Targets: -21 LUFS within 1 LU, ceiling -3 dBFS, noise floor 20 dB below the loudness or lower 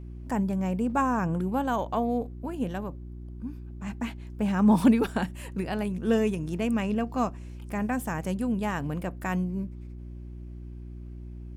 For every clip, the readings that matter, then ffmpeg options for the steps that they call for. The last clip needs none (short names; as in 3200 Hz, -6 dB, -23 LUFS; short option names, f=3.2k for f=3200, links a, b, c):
hum 60 Hz; harmonics up to 360 Hz; hum level -38 dBFS; loudness -28.0 LUFS; peak -8.5 dBFS; loudness target -21.0 LUFS
-> -af "bandreject=f=60:t=h:w=4,bandreject=f=120:t=h:w=4,bandreject=f=180:t=h:w=4,bandreject=f=240:t=h:w=4,bandreject=f=300:t=h:w=4,bandreject=f=360:t=h:w=4"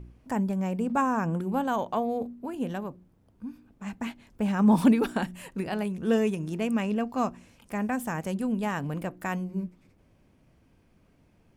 hum none; loudness -28.5 LUFS; peak -8.0 dBFS; loudness target -21.0 LUFS
-> -af "volume=7.5dB,alimiter=limit=-3dB:level=0:latency=1"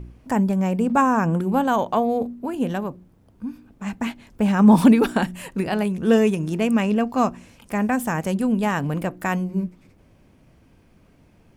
loudness -21.0 LUFS; peak -3.0 dBFS; noise floor -56 dBFS